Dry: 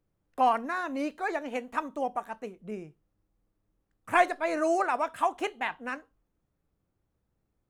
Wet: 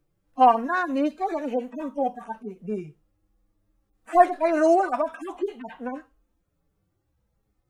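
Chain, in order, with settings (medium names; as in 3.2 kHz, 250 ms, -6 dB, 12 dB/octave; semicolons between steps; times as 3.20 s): harmonic-percussive separation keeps harmonic; trim +8 dB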